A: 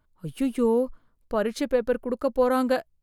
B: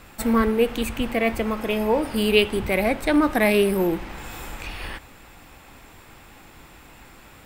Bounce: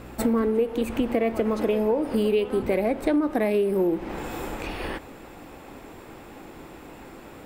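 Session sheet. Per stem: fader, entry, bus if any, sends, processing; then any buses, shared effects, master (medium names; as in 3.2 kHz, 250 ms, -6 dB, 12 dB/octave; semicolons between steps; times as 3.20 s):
-6.5 dB, 0.00 s, no send, hum 60 Hz, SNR 13 dB
-3.0 dB, 0.00 s, no send, peaking EQ 380 Hz +13.5 dB 2.5 oct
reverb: none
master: compression 8:1, threshold -20 dBFS, peak gain reduction 15.5 dB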